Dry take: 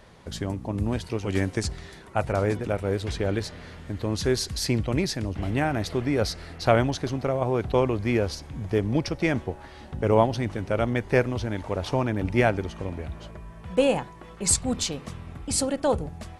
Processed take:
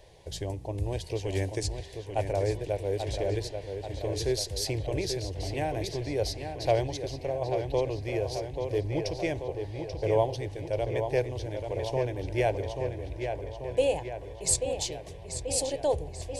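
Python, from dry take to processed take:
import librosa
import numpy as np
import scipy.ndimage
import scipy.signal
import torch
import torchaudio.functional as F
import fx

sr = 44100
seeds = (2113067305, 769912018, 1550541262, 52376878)

p1 = fx.fixed_phaser(x, sr, hz=540.0, stages=4)
p2 = p1 + fx.echo_filtered(p1, sr, ms=836, feedback_pct=60, hz=4700.0, wet_db=-6.5, dry=0)
p3 = fx.rider(p2, sr, range_db=3, speed_s=2.0)
y = F.gain(torch.from_numpy(p3), -3.5).numpy()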